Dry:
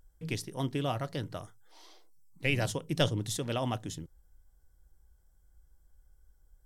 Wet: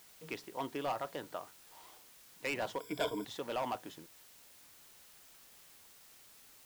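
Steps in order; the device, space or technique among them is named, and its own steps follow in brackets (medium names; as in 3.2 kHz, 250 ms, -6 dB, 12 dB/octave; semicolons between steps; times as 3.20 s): drive-through speaker (band-pass 370–2900 Hz; peaking EQ 950 Hz +6 dB; hard clipper -28 dBFS, distortion -9 dB; white noise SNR 16 dB); 2.80–3.25 s: rippled EQ curve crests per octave 1.7, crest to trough 17 dB; trim -2 dB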